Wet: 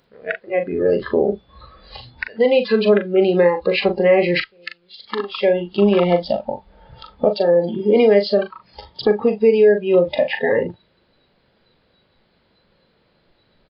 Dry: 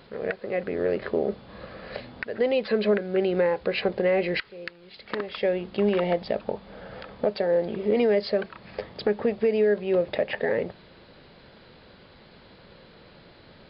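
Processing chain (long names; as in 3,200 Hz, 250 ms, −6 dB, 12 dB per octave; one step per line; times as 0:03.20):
noise reduction from a noise print of the clip's start 19 dB
double-tracking delay 40 ms −8 dB
level +8 dB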